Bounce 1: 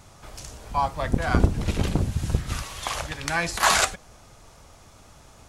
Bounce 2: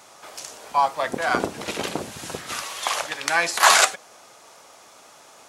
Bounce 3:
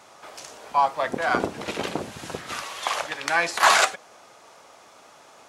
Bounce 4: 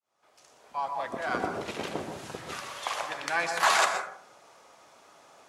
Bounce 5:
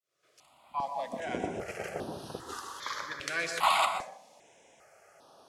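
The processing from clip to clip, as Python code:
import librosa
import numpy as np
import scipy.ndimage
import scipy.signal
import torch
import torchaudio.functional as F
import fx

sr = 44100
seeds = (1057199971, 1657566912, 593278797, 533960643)

y1 = scipy.signal.sosfilt(scipy.signal.butter(2, 430.0, 'highpass', fs=sr, output='sos'), x)
y1 = y1 * librosa.db_to_amplitude(5.0)
y2 = fx.high_shelf(y1, sr, hz=5200.0, db=-9.0)
y2 = 10.0 ** (-4.5 / 20.0) * np.tanh(y2 / 10.0 ** (-4.5 / 20.0))
y3 = fx.fade_in_head(y2, sr, length_s=1.56)
y3 = fx.rev_plate(y3, sr, seeds[0], rt60_s=0.58, hf_ratio=0.35, predelay_ms=110, drr_db=5.5)
y3 = y3 * librosa.db_to_amplitude(-6.5)
y4 = fx.vibrato(y3, sr, rate_hz=0.51, depth_cents=22.0)
y4 = fx.phaser_held(y4, sr, hz=2.5, low_hz=230.0, high_hz=7300.0)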